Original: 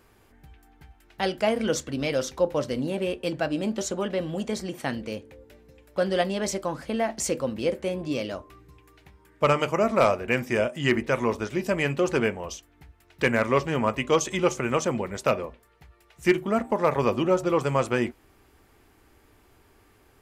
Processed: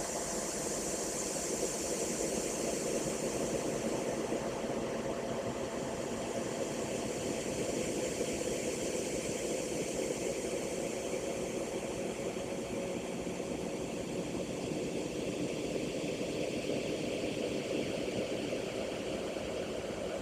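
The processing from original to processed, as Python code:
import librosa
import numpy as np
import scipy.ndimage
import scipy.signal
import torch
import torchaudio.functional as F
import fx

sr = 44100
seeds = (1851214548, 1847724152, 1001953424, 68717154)

y = fx.echo_diffused(x, sr, ms=456, feedback_pct=45, wet_db=-4.0)
y = fx.paulstretch(y, sr, seeds[0], factor=17.0, window_s=0.5, from_s=7.16)
y = fx.hpss(y, sr, part='harmonic', gain_db=-15)
y = F.gain(torch.from_numpy(y), -2.5).numpy()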